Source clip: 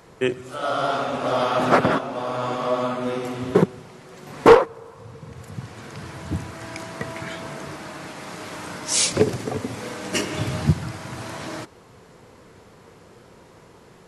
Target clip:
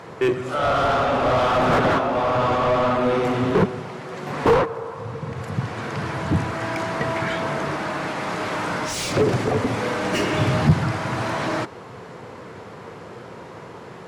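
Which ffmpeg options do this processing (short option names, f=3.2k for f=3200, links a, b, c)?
-filter_complex "[0:a]asplit=2[a][b];[b]highpass=f=720:p=1,volume=29dB,asoftclip=type=tanh:threshold=-3dB[c];[a][c]amix=inputs=2:normalize=0,lowpass=f=1.5k:p=1,volume=-6dB,equalizer=f=110:t=o:w=1.8:g=10,volume=-8dB"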